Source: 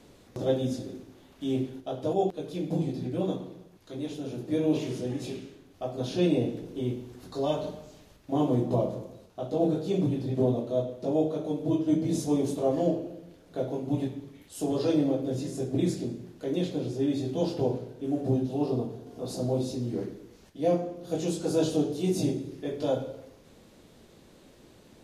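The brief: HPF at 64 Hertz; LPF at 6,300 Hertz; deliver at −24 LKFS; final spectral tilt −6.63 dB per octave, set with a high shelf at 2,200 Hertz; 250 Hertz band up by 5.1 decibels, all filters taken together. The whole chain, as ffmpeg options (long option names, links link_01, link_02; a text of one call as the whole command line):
ffmpeg -i in.wav -af "highpass=64,lowpass=6300,equalizer=frequency=250:width_type=o:gain=6.5,highshelf=frequency=2200:gain=5.5,volume=2dB" out.wav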